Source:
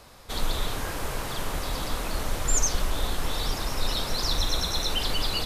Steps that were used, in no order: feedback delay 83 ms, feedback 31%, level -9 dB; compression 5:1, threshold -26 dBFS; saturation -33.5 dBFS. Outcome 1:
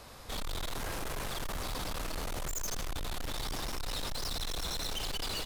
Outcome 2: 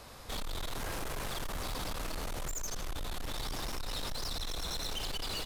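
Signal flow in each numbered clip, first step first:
feedback delay > saturation > compression; feedback delay > compression > saturation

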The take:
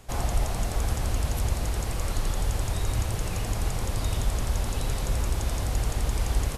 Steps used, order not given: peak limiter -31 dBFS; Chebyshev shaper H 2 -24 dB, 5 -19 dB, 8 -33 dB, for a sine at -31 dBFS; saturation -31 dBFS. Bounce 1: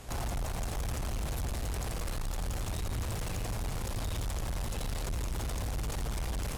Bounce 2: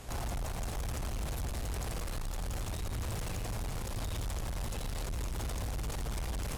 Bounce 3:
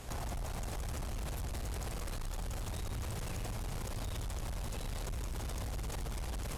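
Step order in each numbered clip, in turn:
saturation > peak limiter > Chebyshev shaper; saturation > Chebyshev shaper > peak limiter; peak limiter > saturation > Chebyshev shaper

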